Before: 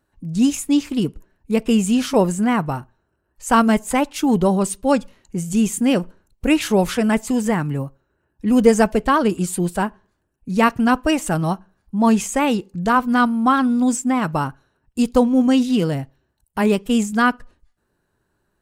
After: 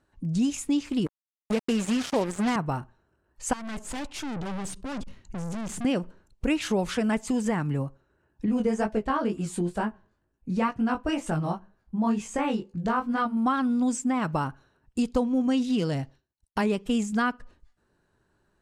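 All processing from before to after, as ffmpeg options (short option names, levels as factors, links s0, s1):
-filter_complex "[0:a]asettb=1/sr,asplit=3[s0][s1][s2];[s0]atrim=end=1.064[s3];[s1]atrim=start=1.06:end=2.56,asetpts=PTS-STARTPTS,afade=t=in:d=0.004:c=qsin,afade=t=out:st=1.496:d=0.004:c=qsin,deesser=0.45,highpass=190,acrusher=bits=3:mix=0:aa=0.5[s4];[s2]atrim=start=2.556[s5];[s3][s4]acrossfade=d=0.004:c1=hsin:c2=qsin[s6];[s6][s5]acrossfade=d=0.004:c1=qsin:c2=hsin,asettb=1/sr,asplit=3[s7][s8][s9];[s7]atrim=end=3.534[s10];[s8]atrim=start=3.53:end=5.85,asetpts=PTS-STARTPTS,afade=t=in:d=0.004:c=qsin,afade=t=out:st=2.316:d=0.004:c=qsin,asubboost=boost=6:cutoff=230,acompressor=threshold=0.2:ratio=6:attack=3.2:release=140:knee=1:detection=peak,aeval=exprs='(tanh(39.8*val(0)+0.55)-tanh(0.55))/39.8':c=same[s11];[s9]atrim=start=5.846[s12];[s10][s11]acrossfade=d=0.004:c1=hsin:c2=qsin[s13];[s13][s12]acrossfade=d=0.004:c1=qsin:c2=hsin,asettb=1/sr,asplit=3[s14][s15][s16];[s14]atrim=end=8.464[s17];[s15]atrim=start=8.46:end=13.37,asetpts=PTS-STARTPTS,afade=t=in:d=0.004:c=qsin,afade=t=out:st=4.906:d=0.004:c=qsin,highshelf=f=2800:g=-6,flanger=delay=18:depth=5.4:speed=2.1,asplit=2[s18][s19];[s19]adelay=14,volume=0.251[s20];[s18][s20]amix=inputs=2:normalize=0,atrim=end_sample=216531[s21];[s16]atrim=start=13.366[s22];[s17][s21]acrossfade=d=0.004:c1=hsin:c2=qsin[s23];[s23][s22]acrossfade=d=0.004:c1=qsin:c2=hsin,asettb=1/sr,asplit=3[s24][s25][s26];[s24]atrim=end=15.784[s27];[s25]atrim=start=15.78:end=16.65,asetpts=PTS-STARTPTS,afade=t=in:d=0.004:c=qsin,afade=t=out:st=0.866:d=0.004:c=qsin,agate=range=0.0224:threshold=0.00126:ratio=3:release=100:detection=peak,equalizer=f=5200:t=o:w=1.1:g=7.5[s28];[s26]atrim=start=16.646[s29];[s27][s28]acrossfade=d=0.004:c1=hsin:c2=qsin[s30];[s30][s29]acrossfade=d=0.004:c1=qsin:c2=hsin,lowpass=8200,acompressor=threshold=0.0501:ratio=2.5"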